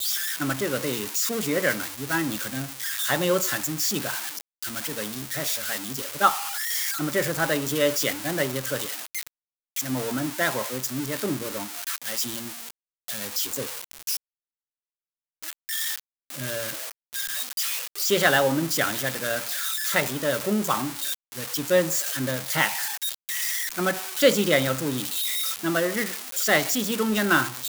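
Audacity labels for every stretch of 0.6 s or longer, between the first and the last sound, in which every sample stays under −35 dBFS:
14.170000	15.430000	silence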